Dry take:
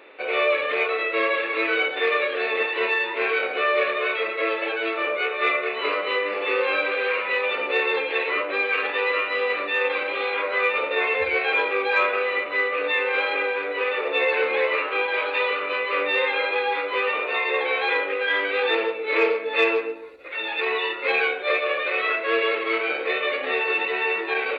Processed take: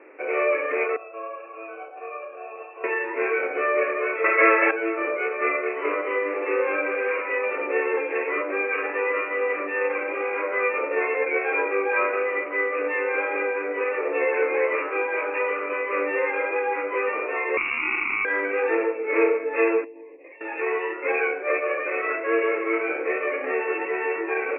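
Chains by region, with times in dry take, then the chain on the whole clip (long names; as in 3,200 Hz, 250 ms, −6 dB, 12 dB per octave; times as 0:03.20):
0:00.96–0:02.84: formant filter a + notch filter 2,200 Hz, Q 10
0:04.24–0:04.71: parametric band 1,700 Hz +13.5 dB 2.8 octaves + gain into a clipping stage and back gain 7.5 dB
0:17.57–0:18.25: sample-rate reduction 1,100 Hz + voice inversion scrambler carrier 2,800 Hz + envelope flattener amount 70%
0:19.84–0:20.41: downward compressor 12 to 1, threshold −39 dBFS + Butterworth band-reject 1,400 Hz, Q 1.9
whole clip: Butterworth low-pass 2,500 Hz 72 dB per octave; low shelf with overshoot 200 Hz −14 dB, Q 3; level −2.5 dB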